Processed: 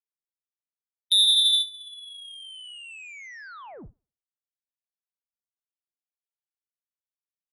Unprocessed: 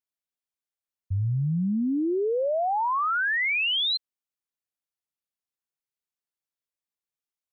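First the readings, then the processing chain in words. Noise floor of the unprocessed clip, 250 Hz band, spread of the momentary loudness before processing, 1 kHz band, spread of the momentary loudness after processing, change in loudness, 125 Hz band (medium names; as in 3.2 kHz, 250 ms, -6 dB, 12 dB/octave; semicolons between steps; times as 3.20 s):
under -85 dBFS, -29.0 dB, 6 LU, -21.5 dB, 9 LU, +6.5 dB, -30.5 dB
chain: tape echo 61 ms, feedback 79%, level -16.5 dB, low-pass 1.7 kHz; frequency inversion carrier 3.7 kHz; Chebyshev shaper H 3 -13 dB, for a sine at -18 dBFS; gate with hold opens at -19 dBFS; trim +8 dB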